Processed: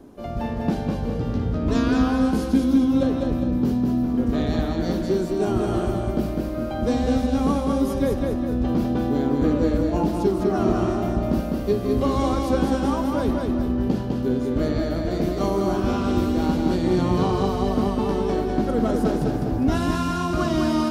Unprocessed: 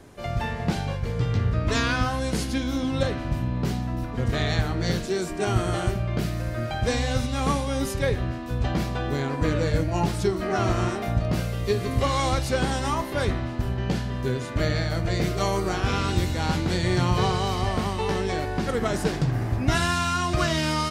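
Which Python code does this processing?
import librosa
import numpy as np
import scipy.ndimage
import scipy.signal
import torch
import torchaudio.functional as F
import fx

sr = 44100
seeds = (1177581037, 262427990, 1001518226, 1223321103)

y = fx.graphic_eq(x, sr, hz=(125, 250, 2000, 4000, 8000), db=(-8, 10, -10, -4, -9))
y = fx.echo_feedback(y, sr, ms=203, feedback_pct=44, wet_db=-3.5)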